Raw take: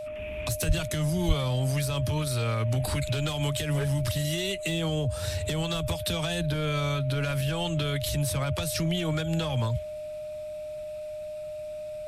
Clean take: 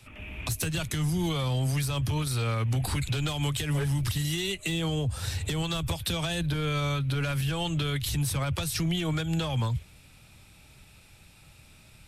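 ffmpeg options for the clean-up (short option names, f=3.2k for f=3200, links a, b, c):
-filter_complex "[0:a]bandreject=f=610:w=30,asplit=3[a][b][c];[a]afade=t=out:st=0.67:d=0.02[d];[b]highpass=f=140:w=0.5412,highpass=f=140:w=1.3066,afade=t=in:st=0.67:d=0.02,afade=t=out:st=0.79:d=0.02[e];[c]afade=t=in:st=0.79:d=0.02[f];[d][e][f]amix=inputs=3:normalize=0,asplit=3[g][h][i];[g]afade=t=out:st=1.27:d=0.02[j];[h]highpass=f=140:w=0.5412,highpass=f=140:w=1.3066,afade=t=in:st=1.27:d=0.02,afade=t=out:st=1.39:d=0.02[k];[i]afade=t=in:st=1.39:d=0.02[l];[j][k][l]amix=inputs=3:normalize=0"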